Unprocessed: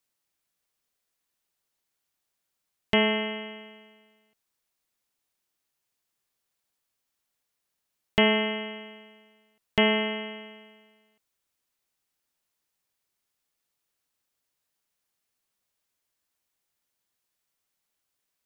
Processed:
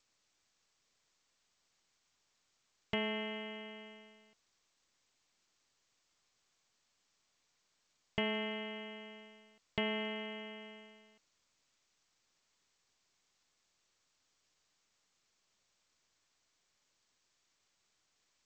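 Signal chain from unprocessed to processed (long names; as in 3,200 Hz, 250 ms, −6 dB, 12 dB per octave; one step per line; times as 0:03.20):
dynamic equaliser 120 Hz, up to +5 dB, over −47 dBFS, Q 3
downward compressor 2 to 1, threshold −49 dBFS, peak gain reduction 17.5 dB
level +2.5 dB
G.722 64 kbit/s 16,000 Hz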